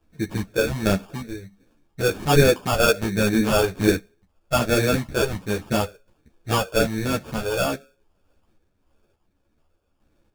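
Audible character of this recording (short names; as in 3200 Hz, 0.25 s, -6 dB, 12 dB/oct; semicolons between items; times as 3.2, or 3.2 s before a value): phasing stages 6, 1.3 Hz, lowest notch 220–1400 Hz; aliases and images of a low sample rate 2000 Hz, jitter 0%; random-step tremolo 3.5 Hz; a shimmering, thickened sound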